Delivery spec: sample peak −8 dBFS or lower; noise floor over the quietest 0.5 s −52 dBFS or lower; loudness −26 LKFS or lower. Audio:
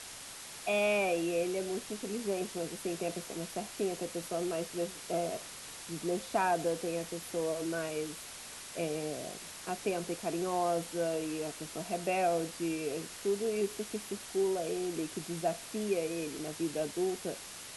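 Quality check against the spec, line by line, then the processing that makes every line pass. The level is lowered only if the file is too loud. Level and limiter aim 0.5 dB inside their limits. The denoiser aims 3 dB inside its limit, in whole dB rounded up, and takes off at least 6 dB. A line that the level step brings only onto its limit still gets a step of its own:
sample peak −17.5 dBFS: in spec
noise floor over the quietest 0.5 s −47 dBFS: out of spec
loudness −35.0 LKFS: in spec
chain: broadband denoise 8 dB, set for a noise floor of −47 dBFS

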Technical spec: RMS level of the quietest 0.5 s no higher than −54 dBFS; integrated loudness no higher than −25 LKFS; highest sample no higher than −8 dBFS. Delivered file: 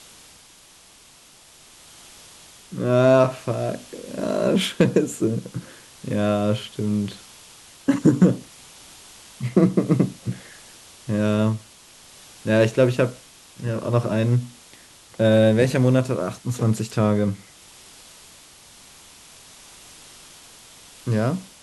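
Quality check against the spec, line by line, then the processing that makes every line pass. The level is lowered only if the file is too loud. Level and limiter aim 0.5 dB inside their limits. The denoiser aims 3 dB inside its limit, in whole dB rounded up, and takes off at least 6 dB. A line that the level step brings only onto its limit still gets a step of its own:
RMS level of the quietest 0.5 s −50 dBFS: out of spec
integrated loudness −21.5 LKFS: out of spec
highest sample −4.5 dBFS: out of spec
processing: broadband denoise 6 dB, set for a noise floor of −50 dBFS
level −4 dB

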